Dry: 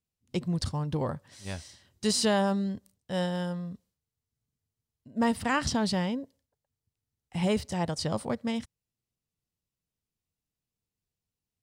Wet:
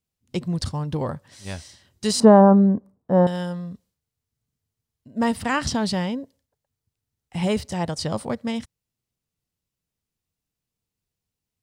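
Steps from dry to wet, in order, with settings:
0:02.20–0:03.27: drawn EQ curve 100 Hz 0 dB, 210 Hz +11 dB, 1,100 Hz +9 dB, 3,100 Hz −21 dB
level +4 dB

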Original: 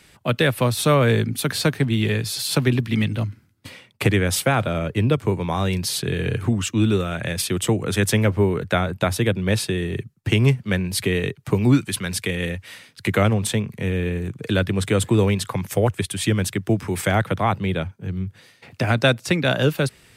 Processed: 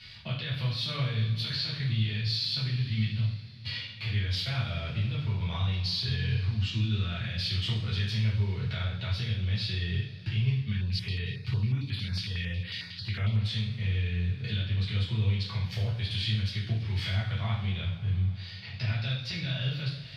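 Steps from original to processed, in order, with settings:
drawn EQ curve 120 Hz 0 dB, 340 Hz −17 dB, 1,500 Hz −6 dB, 4,500 Hz +11 dB, 7,700 Hz −18 dB, 14,000 Hz −15 dB
harmonic and percussive parts rebalanced percussive −6 dB
high-shelf EQ 5,600 Hz −9.5 dB
downward compressor 5 to 1, threshold −36 dBFS, peak gain reduction 17.5 dB
brickwall limiter −29.5 dBFS, peak gain reduction 8.5 dB
coupled-rooms reverb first 0.57 s, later 4.9 s, from −22 dB, DRR −7.5 dB
0:10.72–0:13.41: notch on a step sequencer 11 Hz 560–6,100 Hz

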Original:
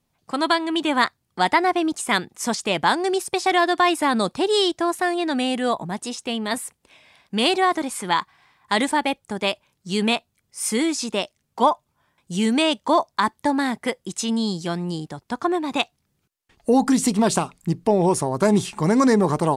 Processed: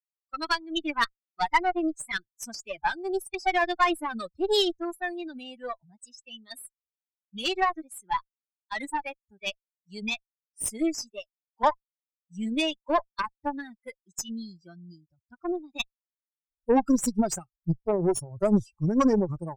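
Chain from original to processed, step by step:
spectral dynamics exaggerated over time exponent 3
harmonic generator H 4 −21 dB, 8 −30 dB, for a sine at −9.5 dBFS

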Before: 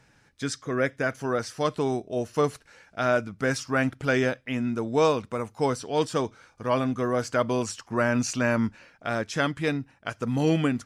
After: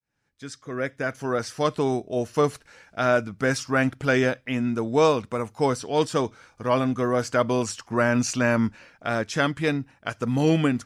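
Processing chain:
fade in at the beginning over 1.55 s
level +2.5 dB

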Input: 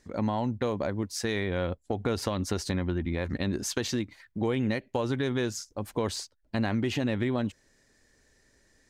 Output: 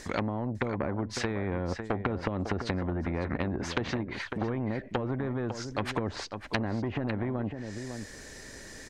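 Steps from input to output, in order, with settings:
treble cut that deepens with the level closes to 330 Hz, closed at −25 dBFS
dynamic equaliser 1,900 Hz, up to +6 dB, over −59 dBFS, Q 1.7
on a send: single-tap delay 552 ms −15 dB
on the sum: soft clipping −20 dBFS, distortion −23 dB
every bin compressed towards the loudest bin 2 to 1
level +8.5 dB

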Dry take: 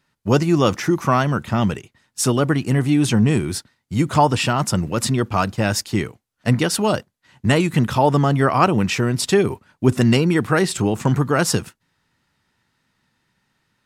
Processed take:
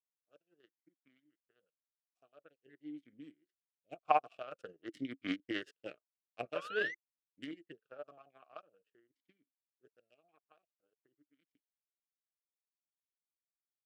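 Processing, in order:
source passing by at 0:05.53, 7 m/s, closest 7 metres
comb filter 6.5 ms, depth 57%
sound drawn into the spectrogram rise, 0:06.55–0:06.95, 980–2,100 Hz −17 dBFS
power curve on the samples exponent 3
formant filter swept between two vowels a-i 0.48 Hz
level +5.5 dB

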